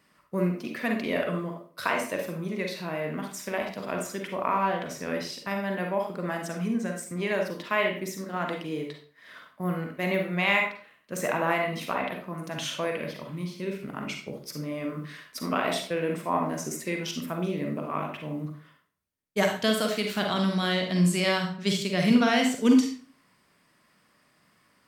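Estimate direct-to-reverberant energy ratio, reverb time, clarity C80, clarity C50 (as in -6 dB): 2.0 dB, 0.45 s, 10.5 dB, 4.5 dB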